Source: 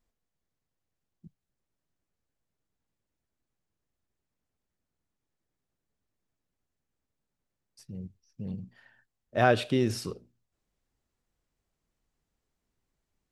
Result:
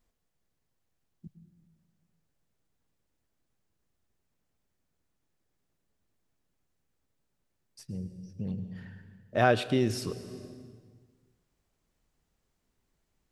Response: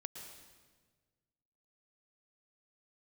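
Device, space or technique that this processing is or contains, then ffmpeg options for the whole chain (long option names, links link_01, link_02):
ducked reverb: -filter_complex "[0:a]asplit=3[link_01][link_02][link_03];[1:a]atrim=start_sample=2205[link_04];[link_02][link_04]afir=irnorm=-1:irlink=0[link_05];[link_03]apad=whole_len=587298[link_06];[link_05][link_06]sidechaincompress=threshold=-39dB:ratio=4:attack=43:release=477,volume=4.5dB[link_07];[link_01][link_07]amix=inputs=2:normalize=0,volume=-2dB"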